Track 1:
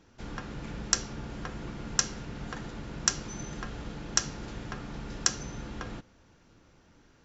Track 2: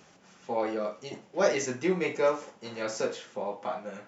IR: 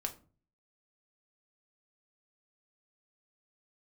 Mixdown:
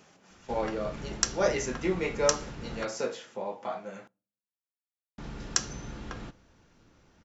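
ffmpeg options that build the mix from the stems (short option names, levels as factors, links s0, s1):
-filter_complex "[0:a]adelay=300,volume=0.708,asplit=3[s0][s1][s2];[s0]atrim=end=2.85,asetpts=PTS-STARTPTS,afade=t=out:st=2.846:d=0.004:c=hsin[s3];[s1]atrim=start=2.85:end=5.18,asetpts=PTS-STARTPTS,volume=0[s4];[s2]atrim=start=5.18,asetpts=PTS-STARTPTS,afade=t=in:d=0.004:c=hsin[s5];[s3][s4][s5]concat=n=3:v=0:a=1,asplit=2[s6][s7];[s7]volume=0.282[s8];[1:a]volume=0.75,asplit=2[s9][s10];[s10]volume=0.133[s11];[2:a]atrim=start_sample=2205[s12];[s8][s11]amix=inputs=2:normalize=0[s13];[s13][s12]afir=irnorm=-1:irlink=0[s14];[s6][s9][s14]amix=inputs=3:normalize=0"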